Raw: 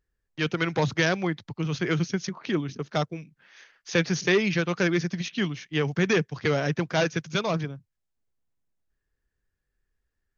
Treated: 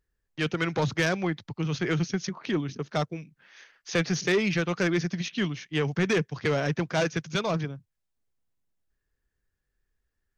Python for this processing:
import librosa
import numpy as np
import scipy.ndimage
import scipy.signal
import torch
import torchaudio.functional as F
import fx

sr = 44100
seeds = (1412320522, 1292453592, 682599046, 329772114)

y = 10.0 ** (-16.0 / 20.0) * np.tanh(x / 10.0 ** (-16.0 / 20.0))